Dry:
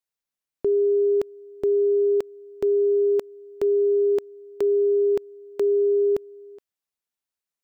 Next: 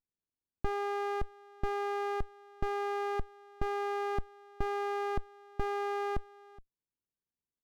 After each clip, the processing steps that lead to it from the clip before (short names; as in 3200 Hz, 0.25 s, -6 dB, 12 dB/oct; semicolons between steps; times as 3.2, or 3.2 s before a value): overdrive pedal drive 11 dB, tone 1100 Hz, clips at -16.5 dBFS; running maximum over 65 samples; gain -2 dB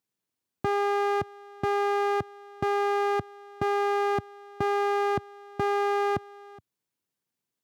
HPF 100 Hz 24 dB/oct; gain +8.5 dB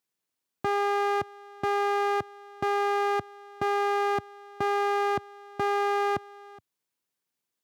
low shelf 300 Hz -8.5 dB; gain +1.5 dB